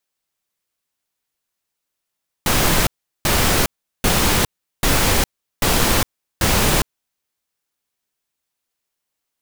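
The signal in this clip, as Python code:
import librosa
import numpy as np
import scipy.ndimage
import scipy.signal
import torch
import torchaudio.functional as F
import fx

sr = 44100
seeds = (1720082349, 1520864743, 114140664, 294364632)

y = fx.noise_burst(sr, seeds[0], colour='pink', on_s=0.41, off_s=0.38, bursts=6, level_db=-16.0)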